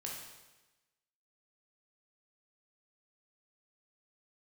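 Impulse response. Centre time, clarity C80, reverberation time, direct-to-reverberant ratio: 58 ms, 4.5 dB, 1.1 s, -2.5 dB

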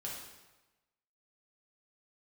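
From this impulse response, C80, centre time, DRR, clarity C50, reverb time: 4.5 dB, 59 ms, -4.5 dB, 1.5 dB, 1.1 s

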